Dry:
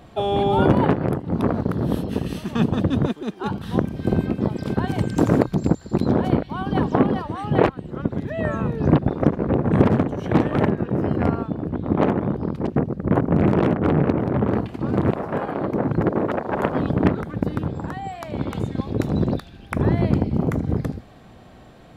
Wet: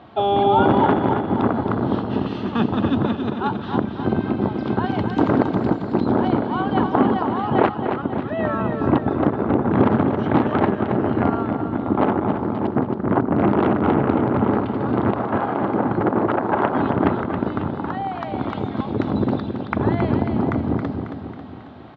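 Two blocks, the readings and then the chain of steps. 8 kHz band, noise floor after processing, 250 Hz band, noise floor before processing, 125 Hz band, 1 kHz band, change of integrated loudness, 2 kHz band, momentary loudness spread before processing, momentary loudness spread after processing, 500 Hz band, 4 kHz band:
can't be measured, −31 dBFS, +1.5 dB, −45 dBFS, −3.0 dB, +6.0 dB, +1.5 dB, +3.0 dB, 8 LU, 7 LU, +1.5 dB, +1.5 dB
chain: notch filter 1,800 Hz, Q 20
in parallel at −3 dB: brickwall limiter −12 dBFS, peak gain reduction 10.5 dB
on the sum: loudspeaker in its box 120–3,800 Hz, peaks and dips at 160 Hz −9 dB, 500 Hz −5 dB, 860 Hz +4 dB, 1,300 Hz +3 dB, 2,400 Hz −4 dB
on a send: repeating echo 272 ms, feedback 54%, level −7 dB
on the sum: level −1.5 dB

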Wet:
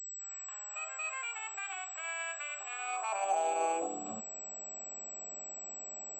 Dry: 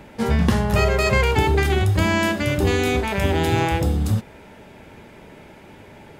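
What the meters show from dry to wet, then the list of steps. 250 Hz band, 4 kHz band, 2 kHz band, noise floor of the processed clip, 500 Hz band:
−27.5 dB, −21.0 dB, −15.0 dB, −45 dBFS, −17.5 dB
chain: fade in at the beginning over 1.95 s
brickwall limiter −12 dBFS, peak gain reduction 6 dB
formant filter a
high-pass filter sweep 1,700 Hz → 200 Hz, 0:02.69–0:04.23
switching amplifier with a slow clock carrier 7,800 Hz

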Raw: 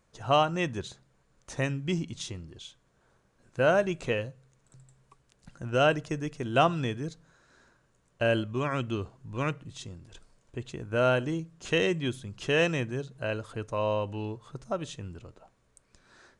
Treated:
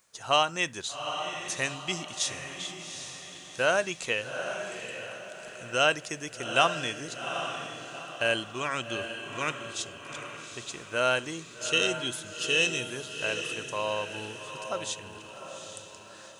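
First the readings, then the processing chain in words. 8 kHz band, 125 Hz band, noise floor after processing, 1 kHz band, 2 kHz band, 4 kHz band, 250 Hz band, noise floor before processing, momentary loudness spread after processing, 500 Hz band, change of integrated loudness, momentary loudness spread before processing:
+12.0 dB, −10.5 dB, −47 dBFS, +0.5 dB, +4.0 dB, +7.5 dB, −7.0 dB, −69 dBFS, 15 LU, −3.0 dB, −0.5 dB, 18 LU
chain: gain on a spectral selection 0:11.44–0:12.88, 510–2,500 Hz −10 dB
spectral tilt +4 dB per octave
on a send: feedback delay with all-pass diffusion 795 ms, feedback 44%, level −7.5 dB

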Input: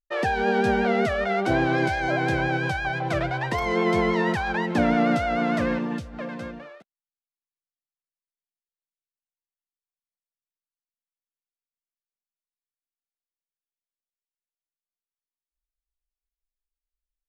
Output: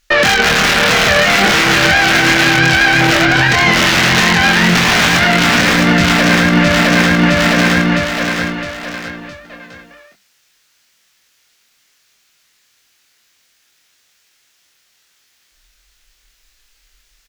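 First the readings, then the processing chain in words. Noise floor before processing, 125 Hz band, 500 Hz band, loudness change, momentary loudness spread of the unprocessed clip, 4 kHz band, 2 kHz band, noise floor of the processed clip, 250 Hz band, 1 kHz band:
below −85 dBFS, +14.0 dB, +8.0 dB, +13.5 dB, 10 LU, +25.5 dB, +18.5 dB, −59 dBFS, +11.5 dB, +11.5 dB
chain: wrap-around overflow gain 16.5 dB
tube saturation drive 25 dB, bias 0.6
speech leveller within 4 dB
flat-topped bell 3,100 Hz +9 dB 2.6 octaves
double-tracking delay 24 ms −4 dB
repeating echo 662 ms, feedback 43%, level −6 dB
downward compressor, threshold −32 dBFS, peak gain reduction 13.5 dB
mains-hum notches 50/100/150/200 Hz
dynamic equaliser 190 Hz, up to +7 dB, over −56 dBFS, Q 1.9
boost into a limiter +31 dB
level −1 dB

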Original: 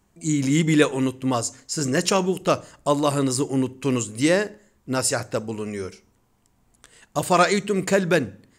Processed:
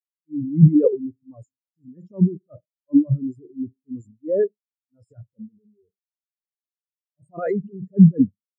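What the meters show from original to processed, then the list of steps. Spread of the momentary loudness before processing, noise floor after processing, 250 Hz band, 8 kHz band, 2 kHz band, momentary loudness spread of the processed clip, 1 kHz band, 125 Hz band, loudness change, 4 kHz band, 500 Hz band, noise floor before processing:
10 LU, below −85 dBFS, +3.0 dB, below −40 dB, below −20 dB, 20 LU, below −15 dB, +6.0 dB, +3.0 dB, below −40 dB, −3.5 dB, −64 dBFS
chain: transient designer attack −12 dB, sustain +11 dB
every bin expanded away from the loudest bin 4 to 1

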